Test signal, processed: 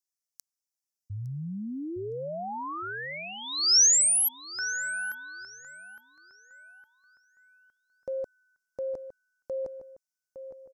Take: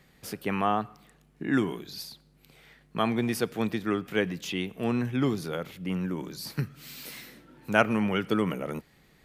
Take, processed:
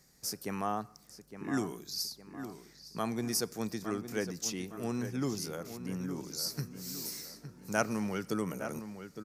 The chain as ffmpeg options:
ffmpeg -i in.wav -filter_complex "[0:a]highshelf=frequency=4200:width_type=q:width=3:gain=10,asplit=2[link_01][link_02];[link_02]adelay=861,lowpass=frequency=2900:poles=1,volume=-10dB,asplit=2[link_03][link_04];[link_04]adelay=861,lowpass=frequency=2900:poles=1,volume=0.44,asplit=2[link_05][link_06];[link_06]adelay=861,lowpass=frequency=2900:poles=1,volume=0.44,asplit=2[link_07][link_08];[link_08]adelay=861,lowpass=frequency=2900:poles=1,volume=0.44,asplit=2[link_09][link_10];[link_10]adelay=861,lowpass=frequency=2900:poles=1,volume=0.44[link_11];[link_03][link_05][link_07][link_09][link_11]amix=inputs=5:normalize=0[link_12];[link_01][link_12]amix=inputs=2:normalize=0,volume=-7.5dB" out.wav

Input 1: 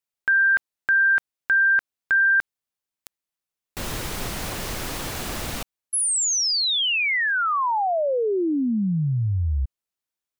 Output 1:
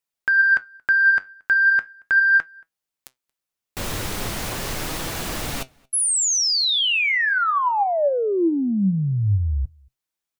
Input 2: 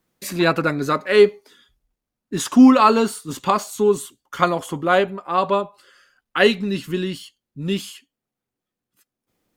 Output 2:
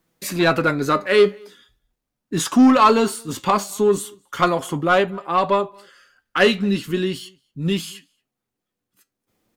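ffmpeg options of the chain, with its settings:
ffmpeg -i in.wav -filter_complex "[0:a]acontrast=67,flanger=delay=6:depth=4.4:regen=73:speed=0.39:shape=sinusoidal,asplit=2[link_01][link_02];[link_02]adelay=227.4,volume=-29dB,highshelf=frequency=4000:gain=-5.12[link_03];[link_01][link_03]amix=inputs=2:normalize=0" out.wav

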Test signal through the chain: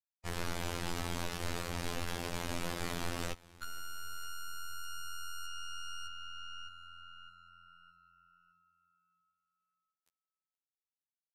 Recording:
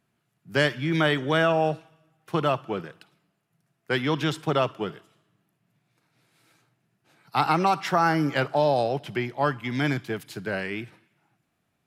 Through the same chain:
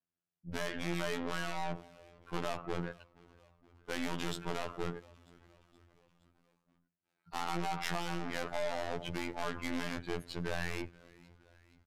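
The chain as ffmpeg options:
ffmpeg -i in.wav -filter_complex "[0:a]afftdn=noise_reduction=26:noise_floor=-42,acompressor=threshold=-23dB:ratio=16,aeval=exprs='(tanh(100*val(0)+0.5)-tanh(0.5))/100':channel_layout=same,asplit=5[link_01][link_02][link_03][link_04][link_05];[link_02]adelay=471,afreqshift=-40,volume=-23.5dB[link_06];[link_03]adelay=942,afreqshift=-80,volume=-28.1dB[link_07];[link_04]adelay=1413,afreqshift=-120,volume=-32.7dB[link_08];[link_05]adelay=1884,afreqshift=-160,volume=-37.2dB[link_09];[link_01][link_06][link_07][link_08][link_09]amix=inputs=5:normalize=0,afftfilt=real='hypot(re,im)*cos(PI*b)':imag='0':win_size=2048:overlap=0.75,aresample=32000,aresample=44100,volume=8dB" out.wav

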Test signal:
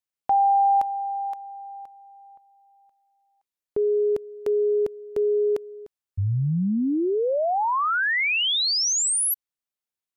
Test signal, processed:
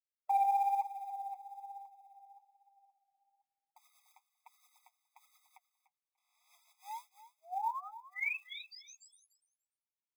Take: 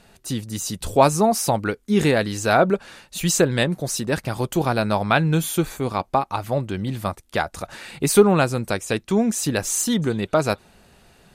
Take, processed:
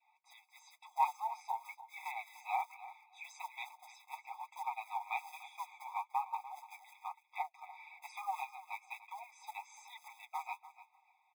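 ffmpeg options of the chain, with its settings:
ffmpeg -i in.wav -filter_complex "[0:a]lowpass=frequency=8600:width=0.5412,lowpass=frequency=8600:width=1.3066,adynamicequalizer=threshold=0.0224:dfrequency=1000:dqfactor=1.1:tfrequency=1000:tqfactor=1.1:attack=5:release=100:ratio=0.438:range=3:mode=cutabove:tftype=bell,asplit=3[link_01][link_02][link_03];[link_01]bandpass=frequency=300:width_type=q:width=8,volume=0dB[link_04];[link_02]bandpass=frequency=870:width_type=q:width=8,volume=-6dB[link_05];[link_03]bandpass=frequency=2240:width_type=q:width=8,volume=-9dB[link_06];[link_04][link_05][link_06]amix=inputs=3:normalize=0,highshelf=frequency=3600:gain=-5.5,aecho=1:1:6.5:0.75,flanger=delay=2.7:depth=9.4:regen=46:speed=1.1:shape=triangular,asoftclip=type=tanh:threshold=-24dB,acrusher=bits=7:mode=log:mix=0:aa=0.000001,aecho=1:1:294|588:0.168|0.0269,afftfilt=real='re*eq(mod(floor(b*sr/1024/660),2),1)':imag='im*eq(mod(floor(b*sr/1024/660),2),1)':win_size=1024:overlap=0.75,volume=4dB" out.wav

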